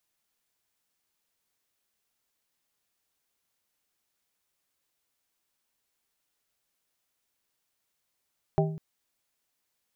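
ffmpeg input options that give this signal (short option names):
-f lavfi -i "aevalsrc='0.0891*pow(10,-3*t/0.72)*sin(2*PI*158*t)+0.075*pow(10,-3*t/0.379)*sin(2*PI*395*t)+0.0631*pow(10,-3*t/0.273)*sin(2*PI*632*t)+0.0531*pow(10,-3*t/0.233)*sin(2*PI*790*t)':d=0.2:s=44100"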